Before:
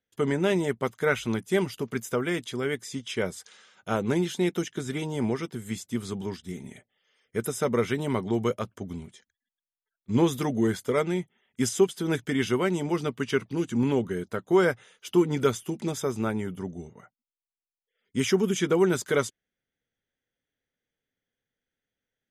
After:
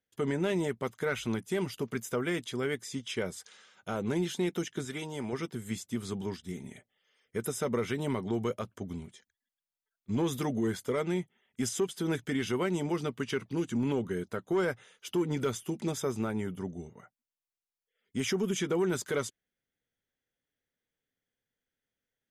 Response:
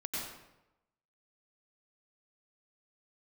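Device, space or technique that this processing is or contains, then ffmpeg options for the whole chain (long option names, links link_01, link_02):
soft clipper into limiter: -filter_complex "[0:a]asoftclip=type=tanh:threshold=-13dB,alimiter=limit=-19.5dB:level=0:latency=1:release=92,asettb=1/sr,asplit=3[link_01][link_02][link_03];[link_01]atrim=end=4.854[link_04];[link_02]atrim=start=4.85:end=5.33,asetpts=PTS-STARTPTS,afade=type=in:duration=0.004:curve=qsin,afade=type=out:start_time=0.476:duration=0.004:curve=qsin,lowshelf=frequency=480:gain=-7.5[link_05];[link_03]atrim=start=5.326[link_06];[link_04][link_05]acrossfade=duration=0.004:curve1=hsin:curve2=qsin[link_07];[link_07][link_06]acrossfade=duration=0.004:curve1=qsin:curve2=hsin,volume=-2.5dB"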